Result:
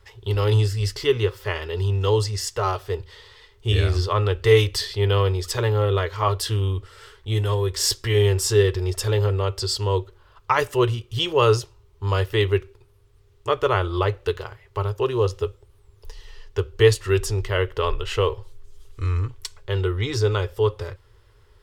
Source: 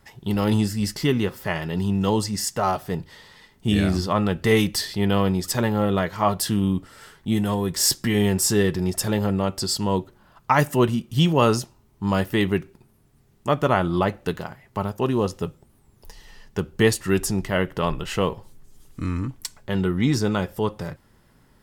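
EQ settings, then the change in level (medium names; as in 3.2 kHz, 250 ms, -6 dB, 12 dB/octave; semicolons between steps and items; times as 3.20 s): FFT filter 110 Hz 0 dB, 160 Hz -29 dB, 260 Hz -24 dB, 420 Hz 0 dB, 710 Hz -14 dB, 1.1 kHz -5 dB, 1.8 kHz -8 dB, 3.3 kHz -3 dB, 7.6 kHz -10 dB, 12 kHz -14 dB; +6.5 dB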